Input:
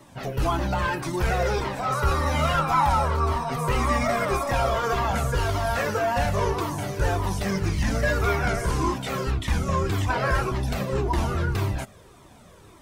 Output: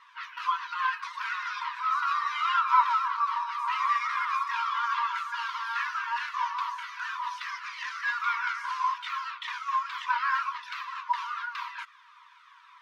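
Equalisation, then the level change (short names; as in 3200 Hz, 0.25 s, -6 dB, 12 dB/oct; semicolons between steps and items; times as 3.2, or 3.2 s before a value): dynamic EQ 1900 Hz, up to -5 dB, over -38 dBFS, Q 1; brick-wall FIR high-pass 930 Hz; air absorption 280 m; +5.0 dB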